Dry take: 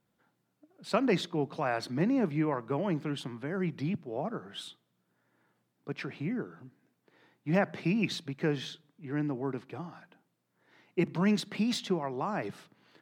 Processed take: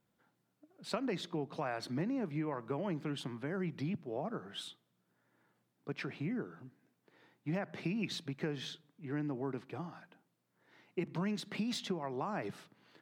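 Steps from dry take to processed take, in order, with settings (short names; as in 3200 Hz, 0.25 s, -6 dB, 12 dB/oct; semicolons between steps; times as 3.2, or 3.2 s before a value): compressor 6:1, threshold -31 dBFS, peak gain reduction 10 dB; gain -2 dB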